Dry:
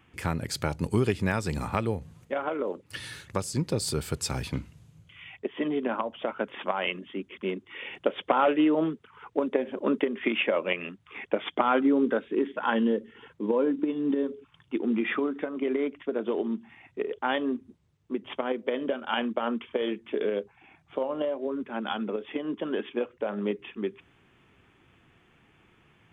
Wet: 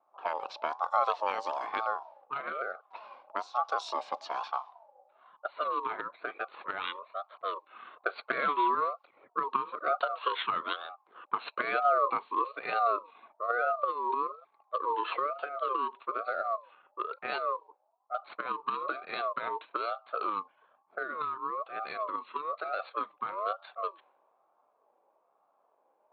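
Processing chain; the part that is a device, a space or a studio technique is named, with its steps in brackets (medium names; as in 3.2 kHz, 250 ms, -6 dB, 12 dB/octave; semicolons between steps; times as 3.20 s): voice changer toy (ring modulator with a swept carrier 830 Hz, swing 20%, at 1.1 Hz; cabinet simulation 560–4700 Hz, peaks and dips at 680 Hz +3 dB, 1.1 kHz +4 dB, 1.9 kHz -9 dB, 3.1 kHz -4 dB); level-controlled noise filter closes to 660 Hz, open at -28 dBFS; trim -1 dB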